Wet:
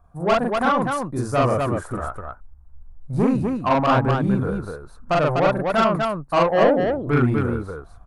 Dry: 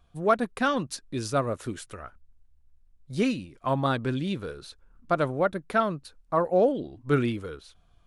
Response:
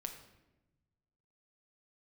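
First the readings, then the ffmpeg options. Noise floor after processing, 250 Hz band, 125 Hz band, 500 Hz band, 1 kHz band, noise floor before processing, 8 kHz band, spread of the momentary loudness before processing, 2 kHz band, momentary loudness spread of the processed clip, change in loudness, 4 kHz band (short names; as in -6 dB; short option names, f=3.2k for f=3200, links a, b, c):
-48 dBFS, +7.0 dB, +9.0 dB, +6.5 dB, +8.0 dB, -62 dBFS, n/a, 15 LU, +6.5 dB, 12 LU, +7.0 dB, +5.0 dB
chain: -filter_complex "[0:a]firequalizer=gain_entry='entry(160,0);entry(740,15);entry(1200,13);entry(3000,-15);entry(9200,-5)':delay=0.05:min_phase=1,acrossover=split=4100[a][b];[a]dynaudnorm=f=560:g=3:m=7dB[c];[c][b]amix=inputs=2:normalize=0,bass=f=250:g=12,treble=f=4k:g=6,asoftclip=type=tanh:threshold=-12.5dB,aecho=1:1:40.82|247.8:1|0.708,volume=-2.5dB"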